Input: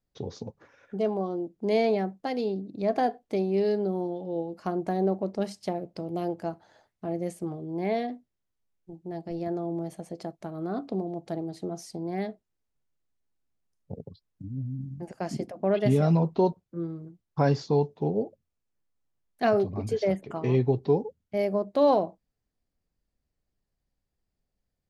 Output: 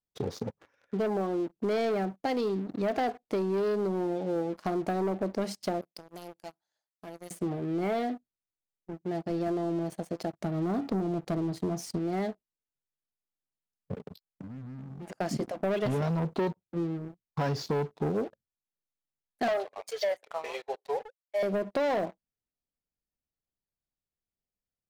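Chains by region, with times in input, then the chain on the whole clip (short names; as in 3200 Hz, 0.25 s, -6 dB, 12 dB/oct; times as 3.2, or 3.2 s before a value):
5.81–7.31 pre-emphasis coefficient 0.9 + transient shaper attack +7 dB, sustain -3 dB + hard clip -39 dBFS
10.33–11.99 HPF 48 Hz + low shelf 180 Hz +12 dB
13.96–15.12 comb 4.8 ms, depth 45% + sample leveller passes 2 + compressor 12:1, threshold -42 dBFS
19.48–21.43 Chebyshev high-pass 530 Hz, order 4 + three-band expander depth 70%
whole clip: sample leveller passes 3; compressor, threshold -20 dBFS; low shelf 92 Hz -6.5 dB; gain -6 dB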